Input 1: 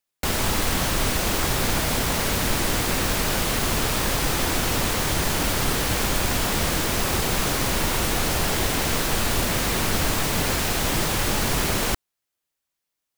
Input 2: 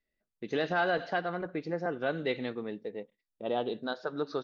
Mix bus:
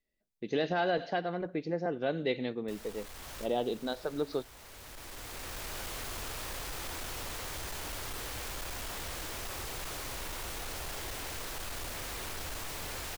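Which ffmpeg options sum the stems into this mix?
ffmpeg -i stem1.wav -i stem2.wav -filter_complex "[0:a]equalizer=frequency=190:width_type=o:width=1.3:gain=-10,asoftclip=type=hard:threshold=-21.5dB,adelay=2450,volume=-14dB[link_01];[1:a]equalizer=frequency=1300:width=1.5:gain=-8,volume=1dB,asplit=2[link_02][link_03];[link_03]apad=whole_len=688901[link_04];[link_01][link_04]sidechaincompress=threshold=-39dB:ratio=12:attack=5.4:release=1310[link_05];[link_05][link_02]amix=inputs=2:normalize=0" out.wav

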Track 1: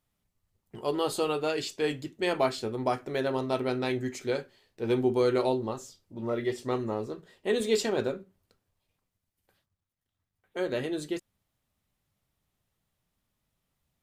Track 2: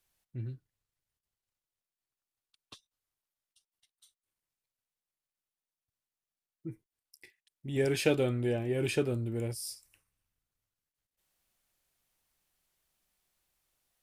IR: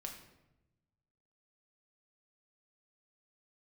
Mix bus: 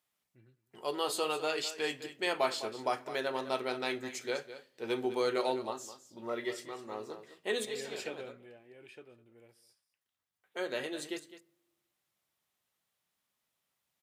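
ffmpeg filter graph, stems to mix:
-filter_complex "[0:a]volume=-1dB,asplit=3[link_01][link_02][link_03];[link_02]volume=-11.5dB[link_04];[link_03]volume=-12dB[link_05];[1:a]bass=frequency=250:gain=-1,treble=frequency=4000:gain=-13,volume=-8.5dB,afade=type=out:start_time=8.21:duration=0.31:silence=0.446684,asplit=3[link_06][link_07][link_08];[link_07]volume=-19.5dB[link_09];[link_08]apad=whole_len=618576[link_10];[link_01][link_10]sidechaincompress=threshold=-58dB:ratio=4:attack=5.7:release=390[link_11];[2:a]atrim=start_sample=2205[link_12];[link_04][link_12]afir=irnorm=-1:irlink=0[link_13];[link_05][link_09]amix=inputs=2:normalize=0,aecho=0:1:207:1[link_14];[link_11][link_06][link_13][link_14]amix=inputs=4:normalize=0,highpass=frequency=870:poles=1"

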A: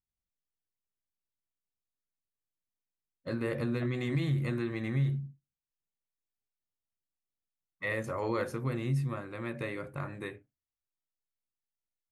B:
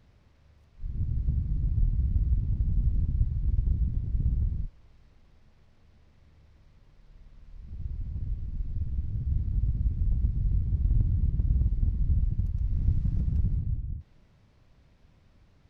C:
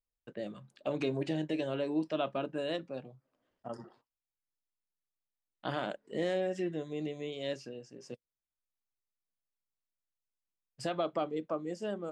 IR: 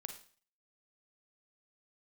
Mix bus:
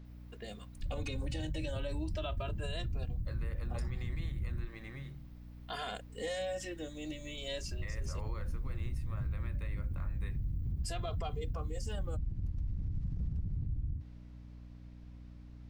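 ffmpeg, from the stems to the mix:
-filter_complex "[0:a]equalizer=frequency=170:width_type=o:width=2.7:gain=-12.5,alimiter=level_in=6dB:limit=-24dB:level=0:latency=1:release=480,volume=-6dB,volume=-6.5dB[link_01];[1:a]acompressor=threshold=-27dB:ratio=6,alimiter=level_in=3dB:limit=-24dB:level=0:latency=1:release=45,volume=-3dB,volume=-0.5dB[link_02];[2:a]aemphasis=mode=production:type=riaa,asplit=2[link_03][link_04];[link_04]adelay=2.5,afreqshift=0.37[link_05];[link_03][link_05]amix=inputs=2:normalize=1,adelay=50,volume=1.5dB[link_06];[link_01][link_02][link_06]amix=inputs=3:normalize=0,aeval=exprs='val(0)+0.00355*(sin(2*PI*60*n/s)+sin(2*PI*2*60*n/s)/2+sin(2*PI*3*60*n/s)/3+sin(2*PI*4*60*n/s)/4+sin(2*PI*5*60*n/s)/5)':channel_layout=same,alimiter=level_in=5dB:limit=-24dB:level=0:latency=1:release=54,volume=-5dB"

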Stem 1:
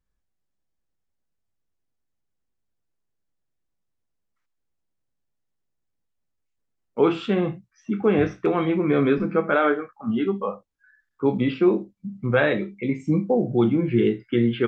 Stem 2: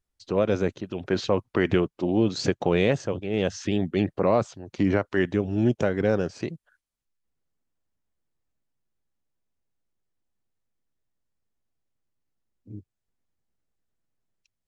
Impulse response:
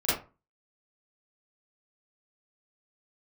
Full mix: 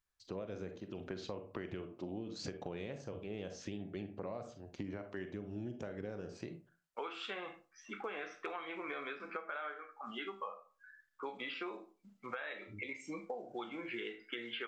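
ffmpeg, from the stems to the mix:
-filter_complex "[0:a]highpass=960,alimiter=limit=-20dB:level=0:latency=1:release=294,volume=-1dB,asplit=2[link_01][link_02];[link_02]volume=-24dB[link_03];[1:a]volume=-12.5dB,asplit=2[link_04][link_05];[link_05]volume=-18dB[link_06];[2:a]atrim=start_sample=2205[link_07];[link_03][link_06]amix=inputs=2:normalize=0[link_08];[link_08][link_07]afir=irnorm=-1:irlink=0[link_09];[link_01][link_04][link_09]amix=inputs=3:normalize=0,acompressor=threshold=-39dB:ratio=10"

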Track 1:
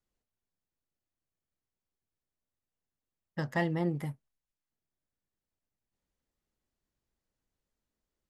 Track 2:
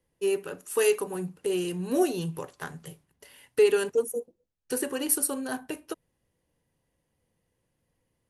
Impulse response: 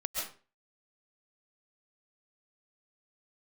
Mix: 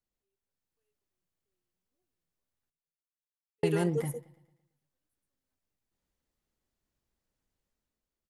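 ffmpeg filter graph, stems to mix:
-filter_complex "[0:a]dynaudnorm=framelen=160:gausssize=7:maxgain=6.5dB,volume=-5dB,asplit=3[link_01][link_02][link_03];[link_01]atrim=end=2.7,asetpts=PTS-STARTPTS,afade=type=out:start_time=2.696:duration=0.004:curve=hsin[link_04];[link_02]atrim=start=2.7:end=3.63,asetpts=PTS-STARTPTS,volume=0[link_05];[link_03]atrim=start=3.63,asetpts=PTS-STARTPTS,afade=type=in:duration=0.004:curve=hsin[link_06];[link_04][link_05][link_06]concat=n=3:v=0:a=1,asplit=3[link_07][link_08][link_09];[link_08]volume=-18.5dB[link_10];[1:a]volume=-8dB[link_11];[link_09]apad=whole_len=365597[link_12];[link_11][link_12]sidechaingate=range=-57dB:threshold=-42dB:ratio=16:detection=peak[link_13];[link_10]aecho=0:1:112|224|336|448|560|672|784:1|0.5|0.25|0.125|0.0625|0.0312|0.0156[link_14];[link_07][link_13][link_14]amix=inputs=3:normalize=0"

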